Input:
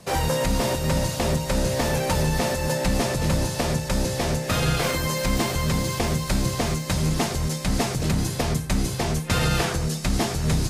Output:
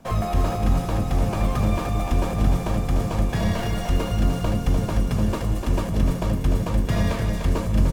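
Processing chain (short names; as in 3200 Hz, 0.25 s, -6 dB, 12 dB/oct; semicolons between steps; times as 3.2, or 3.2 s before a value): echo 0.403 s -5.5 dB; in parallel at -9.5 dB: sample-rate reducer 8800 Hz; on the sum: comb 2.4 ms, depth 31%; on a send at -12.5 dB: reverb RT60 2.8 s, pre-delay 3 ms; on the sum: speed mistake 33 rpm record played at 45 rpm; tilt -2 dB/oct; gain -7.5 dB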